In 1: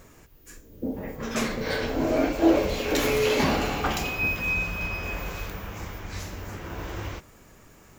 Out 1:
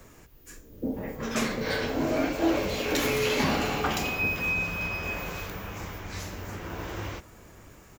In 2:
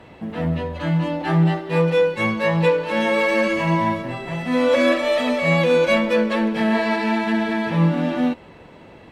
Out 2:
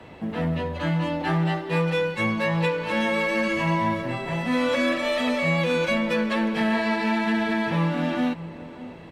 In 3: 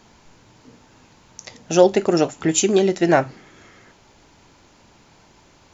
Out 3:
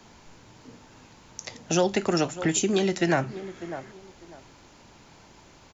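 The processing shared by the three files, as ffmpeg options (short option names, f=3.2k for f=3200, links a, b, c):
-filter_complex "[0:a]asplit=2[a][b];[b]adelay=597,lowpass=f=2k:p=1,volume=-19.5dB,asplit=2[c][d];[d]adelay=597,lowpass=f=2k:p=1,volume=0.23[e];[a][c][e]amix=inputs=3:normalize=0,acrossover=split=80|280|810[f][g][h][i];[f]acompressor=threshold=-44dB:ratio=4[j];[g]acompressor=threshold=-25dB:ratio=4[k];[h]acompressor=threshold=-31dB:ratio=4[l];[i]acompressor=threshold=-25dB:ratio=4[m];[j][k][l][m]amix=inputs=4:normalize=0"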